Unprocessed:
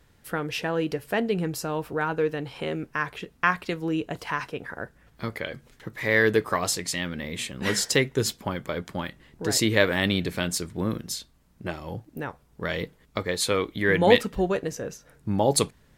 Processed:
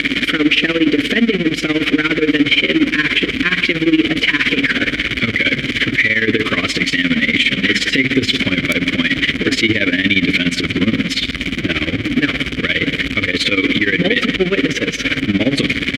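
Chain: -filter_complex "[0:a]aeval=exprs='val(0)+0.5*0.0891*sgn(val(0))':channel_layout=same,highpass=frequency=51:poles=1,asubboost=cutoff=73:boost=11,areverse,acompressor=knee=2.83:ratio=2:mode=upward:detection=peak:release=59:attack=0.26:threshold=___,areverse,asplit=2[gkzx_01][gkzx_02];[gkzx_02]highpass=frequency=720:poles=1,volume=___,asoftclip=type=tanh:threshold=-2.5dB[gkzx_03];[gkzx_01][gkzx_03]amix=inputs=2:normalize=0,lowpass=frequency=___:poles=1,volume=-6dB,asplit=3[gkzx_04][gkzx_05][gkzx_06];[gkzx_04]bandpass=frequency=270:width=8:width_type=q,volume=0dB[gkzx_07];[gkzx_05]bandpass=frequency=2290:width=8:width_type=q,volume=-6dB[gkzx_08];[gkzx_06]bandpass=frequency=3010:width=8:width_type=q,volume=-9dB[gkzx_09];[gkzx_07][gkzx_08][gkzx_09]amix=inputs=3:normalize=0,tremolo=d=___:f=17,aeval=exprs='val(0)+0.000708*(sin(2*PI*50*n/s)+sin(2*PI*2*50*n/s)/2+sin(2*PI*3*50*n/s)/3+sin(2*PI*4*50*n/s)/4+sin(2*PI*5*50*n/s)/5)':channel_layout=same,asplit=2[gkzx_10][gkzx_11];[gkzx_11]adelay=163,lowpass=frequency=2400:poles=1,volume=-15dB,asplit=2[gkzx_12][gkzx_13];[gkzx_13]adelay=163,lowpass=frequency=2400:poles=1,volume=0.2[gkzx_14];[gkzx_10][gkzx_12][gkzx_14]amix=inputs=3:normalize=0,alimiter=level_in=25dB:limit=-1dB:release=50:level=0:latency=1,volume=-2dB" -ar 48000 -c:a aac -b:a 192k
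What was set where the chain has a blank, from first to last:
-23dB, 17dB, 2200, 0.85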